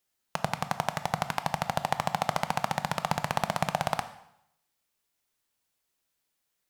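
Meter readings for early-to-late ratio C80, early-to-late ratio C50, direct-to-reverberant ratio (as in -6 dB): 15.5 dB, 13.5 dB, 10.5 dB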